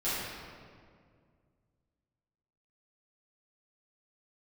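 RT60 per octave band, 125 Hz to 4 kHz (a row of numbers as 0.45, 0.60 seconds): 2.9, 2.6, 2.3, 1.9, 1.6, 1.3 seconds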